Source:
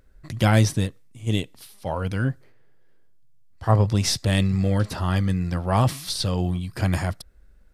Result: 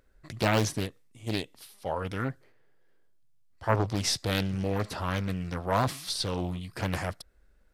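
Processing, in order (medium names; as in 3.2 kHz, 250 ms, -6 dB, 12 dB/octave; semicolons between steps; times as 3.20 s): tone controls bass -7 dB, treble -1 dB; loudspeaker Doppler distortion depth 0.77 ms; trim -3 dB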